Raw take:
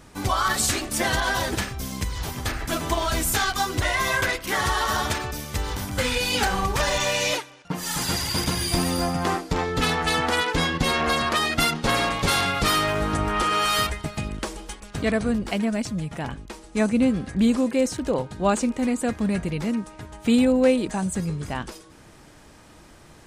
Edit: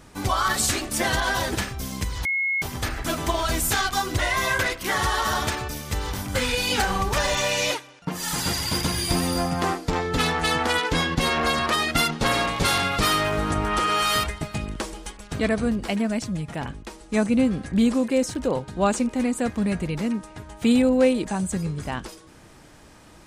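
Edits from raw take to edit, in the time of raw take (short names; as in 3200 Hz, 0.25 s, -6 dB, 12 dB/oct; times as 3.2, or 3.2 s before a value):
2.25 add tone 2170 Hz -21 dBFS 0.37 s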